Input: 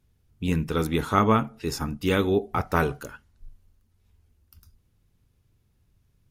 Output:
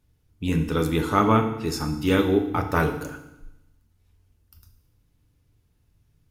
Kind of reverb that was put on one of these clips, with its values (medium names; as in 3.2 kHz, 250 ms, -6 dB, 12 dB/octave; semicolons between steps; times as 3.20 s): FDN reverb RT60 0.89 s, low-frequency decay 1.2×, high-frequency decay 1×, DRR 5 dB